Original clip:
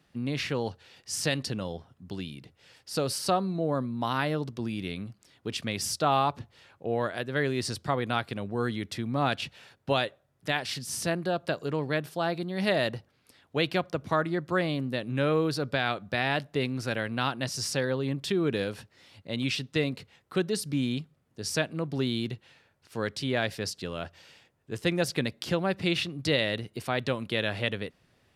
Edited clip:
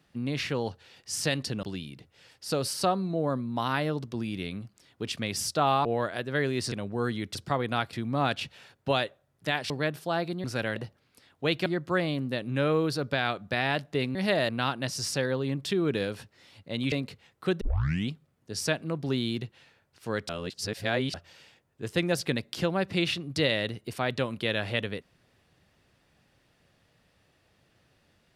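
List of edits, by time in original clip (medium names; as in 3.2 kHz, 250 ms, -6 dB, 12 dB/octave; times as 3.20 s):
1.63–2.08 s: delete
6.30–6.86 s: delete
7.73–8.31 s: move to 8.94 s
10.71–11.80 s: delete
12.54–12.88 s: swap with 16.76–17.08 s
13.78–14.27 s: delete
19.51–19.81 s: delete
20.50 s: tape start 0.48 s
23.18–24.03 s: reverse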